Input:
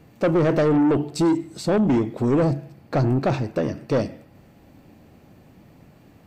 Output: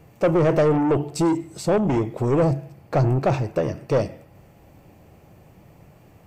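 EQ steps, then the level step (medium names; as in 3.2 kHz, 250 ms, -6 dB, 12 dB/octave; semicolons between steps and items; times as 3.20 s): fifteen-band graphic EQ 250 Hz -10 dB, 1.6 kHz -4 dB, 4 kHz -7 dB; +3.0 dB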